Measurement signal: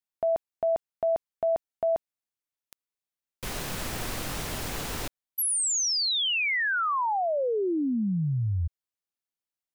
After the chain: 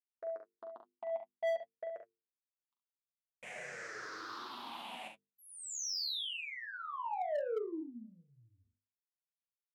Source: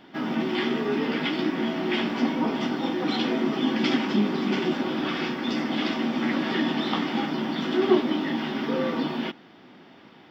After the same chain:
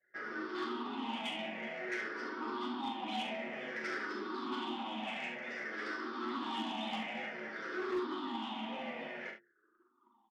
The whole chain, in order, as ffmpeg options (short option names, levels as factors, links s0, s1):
-filter_complex "[0:a]afftfilt=real='re*pow(10,18/40*sin(2*PI*(0.53*log(max(b,1)*sr/1024/100)/log(2)-(-0.54)*(pts-256)/sr)))':imag='im*pow(10,18/40*sin(2*PI*(0.53*log(max(b,1)*sr/1024/100)/log(2)-(-0.54)*(pts-256)/sr)))':win_size=1024:overlap=0.75,lowpass=1400,aderivative,asoftclip=type=tanh:threshold=0.0112,anlmdn=0.0000251,lowshelf=f=130:t=q:w=1.5:g=-10,flanger=delay=8:depth=1.5:regen=28:speed=1.1:shape=triangular,bandreject=f=50:t=h:w=6,bandreject=f=100:t=h:w=6,bandreject=f=150:t=h:w=6,bandreject=f=200:t=h:w=6,bandreject=f=250:t=h:w=6,bandreject=f=300:t=h:w=6,bandreject=f=350:t=h:w=6,bandreject=f=400:t=h:w=6,bandreject=f=450:t=h:w=6,asplit=2[s0][s1];[s1]aecho=0:1:41|69:0.473|0.316[s2];[s0][s2]amix=inputs=2:normalize=0,asoftclip=type=hard:threshold=0.01,volume=3.16"